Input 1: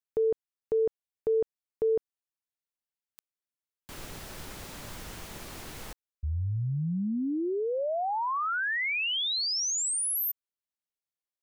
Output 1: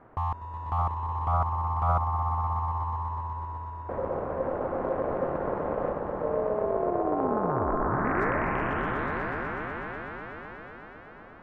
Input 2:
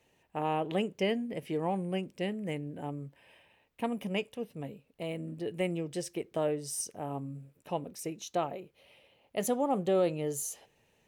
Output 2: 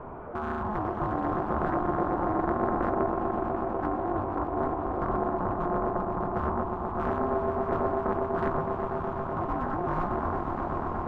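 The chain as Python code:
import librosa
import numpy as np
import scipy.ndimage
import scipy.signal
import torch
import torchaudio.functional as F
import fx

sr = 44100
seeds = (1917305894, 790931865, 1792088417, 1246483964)

p1 = x + 0.5 * 10.0 ** (-37.0 / 20.0) * np.sign(x)
p2 = scipy.signal.sosfilt(scipy.signal.bessel(4, 610.0, 'lowpass', norm='mag', fs=sr, output='sos'), p1)
p3 = fx.over_compress(p2, sr, threshold_db=-36.0, ratio=-0.5)
p4 = p2 + F.gain(torch.from_numpy(p3), 2.5).numpy()
p5 = np.clip(10.0 ** (22.5 / 20.0) * p4, -1.0, 1.0) / 10.0 ** (22.5 / 20.0)
p6 = fx.echo_swell(p5, sr, ms=123, loudest=5, wet_db=-8.0)
p7 = p6 * np.sin(2.0 * np.pi * 530.0 * np.arange(len(p6)) / sr)
y = fx.doppler_dist(p7, sr, depth_ms=0.68)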